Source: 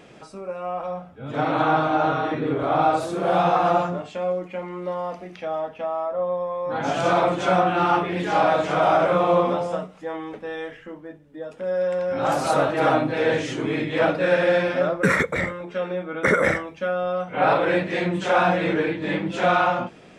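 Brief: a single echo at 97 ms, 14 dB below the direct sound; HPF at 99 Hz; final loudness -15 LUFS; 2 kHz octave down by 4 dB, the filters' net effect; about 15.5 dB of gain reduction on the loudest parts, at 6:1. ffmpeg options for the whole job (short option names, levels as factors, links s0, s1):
-af "highpass=99,equalizer=f=2000:t=o:g=-5.5,acompressor=threshold=0.0224:ratio=6,aecho=1:1:97:0.2,volume=11.2"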